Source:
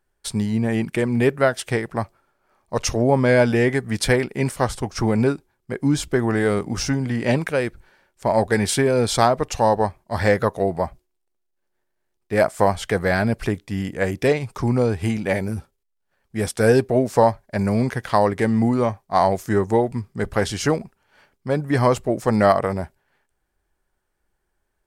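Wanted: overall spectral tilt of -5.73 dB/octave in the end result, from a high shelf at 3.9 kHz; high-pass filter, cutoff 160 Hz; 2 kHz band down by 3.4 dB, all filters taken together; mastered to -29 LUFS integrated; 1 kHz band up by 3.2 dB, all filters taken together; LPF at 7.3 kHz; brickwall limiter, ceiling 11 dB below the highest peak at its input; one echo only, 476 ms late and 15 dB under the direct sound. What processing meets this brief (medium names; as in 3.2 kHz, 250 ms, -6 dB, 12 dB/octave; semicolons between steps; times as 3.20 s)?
high-pass 160 Hz; low-pass 7.3 kHz; peaking EQ 1 kHz +5.5 dB; peaking EQ 2 kHz -5 dB; treble shelf 3.9 kHz -6.5 dB; peak limiter -10.5 dBFS; delay 476 ms -15 dB; trim -5 dB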